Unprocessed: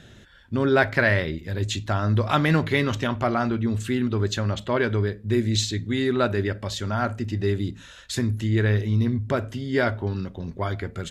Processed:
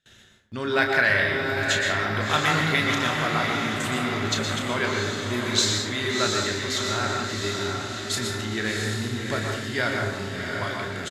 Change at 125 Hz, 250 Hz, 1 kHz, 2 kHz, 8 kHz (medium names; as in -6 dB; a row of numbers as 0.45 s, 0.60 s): -7.0 dB, -4.5 dB, +2.0 dB, +4.5 dB, +7.5 dB